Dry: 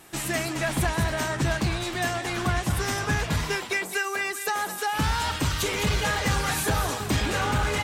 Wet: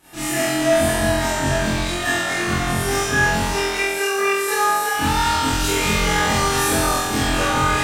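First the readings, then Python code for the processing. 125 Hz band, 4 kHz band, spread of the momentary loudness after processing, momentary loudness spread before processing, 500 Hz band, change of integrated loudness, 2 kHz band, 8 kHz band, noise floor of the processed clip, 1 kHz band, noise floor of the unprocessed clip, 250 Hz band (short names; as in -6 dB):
+2.0 dB, +7.0 dB, 3 LU, 3 LU, +9.5 dB, +7.0 dB, +7.0 dB, +8.0 dB, -24 dBFS, +8.5 dB, -35 dBFS, +7.0 dB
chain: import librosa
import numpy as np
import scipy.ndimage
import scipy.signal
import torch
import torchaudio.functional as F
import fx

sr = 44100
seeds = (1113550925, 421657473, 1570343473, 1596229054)

y = fx.room_flutter(x, sr, wall_m=3.9, rt60_s=1.1)
y = fx.rev_schroeder(y, sr, rt60_s=0.41, comb_ms=26, drr_db=-8.5)
y = y * 10.0 ** (-7.5 / 20.0)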